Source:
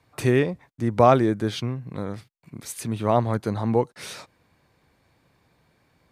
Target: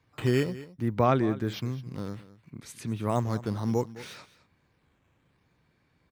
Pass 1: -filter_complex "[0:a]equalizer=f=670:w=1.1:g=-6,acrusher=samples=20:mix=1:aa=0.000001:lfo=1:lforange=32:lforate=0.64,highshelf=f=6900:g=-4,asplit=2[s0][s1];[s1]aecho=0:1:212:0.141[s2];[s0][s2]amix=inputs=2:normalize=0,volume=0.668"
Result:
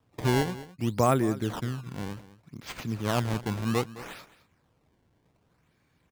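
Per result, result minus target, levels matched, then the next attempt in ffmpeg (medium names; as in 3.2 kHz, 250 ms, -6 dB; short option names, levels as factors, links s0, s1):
decimation with a swept rate: distortion +10 dB; 8 kHz band +6.0 dB
-filter_complex "[0:a]equalizer=f=670:w=1.1:g=-6,acrusher=samples=5:mix=1:aa=0.000001:lfo=1:lforange=8:lforate=0.64,highshelf=f=6900:g=-4,asplit=2[s0][s1];[s1]aecho=0:1:212:0.141[s2];[s0][s2]amix=inputs=2:normalize=0,volume=0.668"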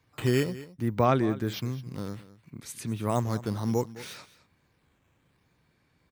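8 kHz band +4.5 dB
-filter_complex "[0:a]equalizer=f=670:w=1.1:g=-6,acrusher=samples=5:mix=1:aa=0.000001:lfo=1:lforange=8:lforate=0.64,highshelf=f=6900:g=-12.5,asplit=2[s0][s1];[s1]aecho=0:1:212:0.141[s2];[s0][s2]amix=inputs=2:normalize=0,volume=0.668"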